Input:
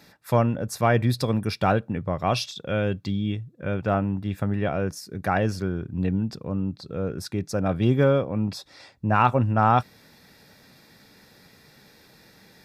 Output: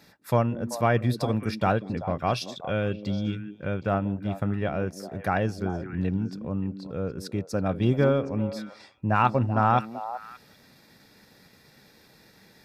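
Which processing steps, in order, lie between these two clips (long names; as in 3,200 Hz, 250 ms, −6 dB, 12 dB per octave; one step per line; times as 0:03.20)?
transient designer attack +1 dB, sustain −5 dB
echo through a band-pass that steps 192 ms, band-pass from 280 Hz, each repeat 1.4 octaves, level −7 dB
level −2.5 dB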